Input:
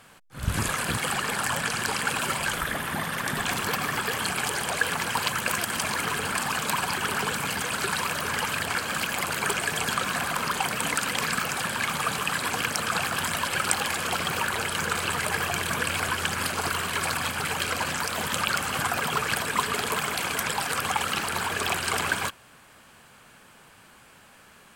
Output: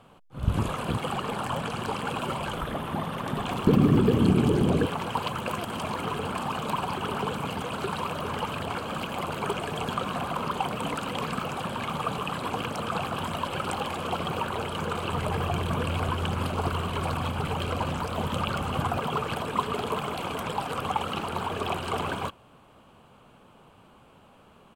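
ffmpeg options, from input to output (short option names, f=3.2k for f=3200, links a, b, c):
-filter_complex "[0:a]asettb=1/sr,asplit=3[a][b][c];[a]atrim=end=3.674[d];[b]atrim=start=3.67:end=4.86,asetpts=PTS-STARTPTS,afade=t=in:d=0.004:c=qsin,afade=t=out:st=1.186:d=0.004:c=qsin,lowshelf=f=480:t=q:w=1.5:g=13.5[e];[c]atrim=start=4.856[f];[d][e]acrossfade=d=0.004:c1=hsin:c2=qsin[g];[g][f]acrossfade=d=0.004:c1=qsin:c2=hsin,asettb=1/sr,asplit=3[h][i][j];[h]atrim=end=15.124[k];[i]atrim=start=15.12:end=18.99,asetpts=PTS-STARTPTS,afade=t=in:d=0.004:c=qsin,afade=t=out:st=3.866:d=0.004:c=qsin,lowshelf=f=110:g=11[l];[j]atrim=start=18.986[m];[k][l]acrossfade=d=0.004:c1=hsin:c2=qsin[n];[n][m]acrossfade=d=0.004:c1=qsin:c2=hsin,firequalizer=gain_entry='entry(480,0);entry(1200,-4);entry(1700,-17);entry(2900,-7);entry(5000,-18)':delay=0.05:min_phase=1,volume=2.5dB"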